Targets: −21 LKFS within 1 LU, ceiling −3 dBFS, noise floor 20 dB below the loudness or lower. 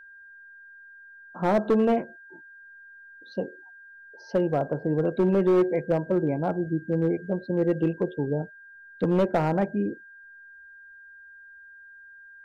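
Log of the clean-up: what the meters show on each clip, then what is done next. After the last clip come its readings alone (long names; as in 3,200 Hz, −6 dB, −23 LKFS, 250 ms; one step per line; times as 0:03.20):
share of clipped samples 0.9%; peaks flattened at −16.0 dBFS; interfering tone 1,600 Hz; level of the tone −46 dBFS; integrated loudness −26.0 LKFS; sample peak −16.0 dBFS; target loudness −21.0 LKFS
→ clipped peaks rebuilt −16 dBFS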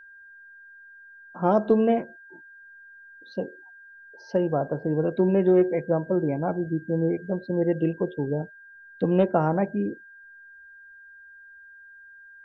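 share of clipped samples 0.0%; interfering tone 1,600 Hz; level of the tone −46 dBFS
→ notch filter 1,600 Hz, Q 30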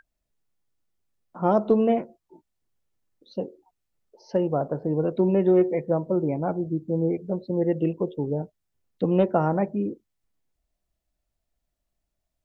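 interfering tone none found; integrated loudness −25.0 LKFS; sample peak −7.5 dBFS; target loudness −21.0 LKFS
→ level +4 dB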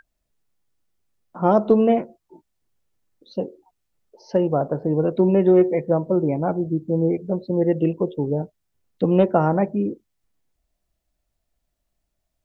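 integrated loudness −21.0 LKFS; sample peak −3.5 dBFS; background noise floor −77 dBFS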